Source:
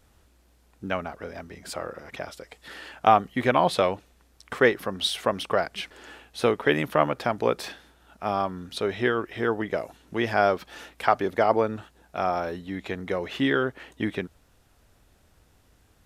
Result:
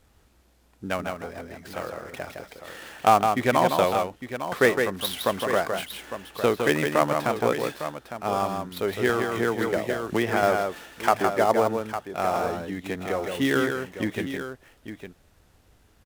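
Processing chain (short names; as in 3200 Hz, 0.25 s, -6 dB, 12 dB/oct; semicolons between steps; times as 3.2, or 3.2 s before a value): switching dead time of 0.07 ms; tapped delay 0.161/0.855 s -5.5/-10.5 dB; 9.09–10.43 three-band squash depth 100%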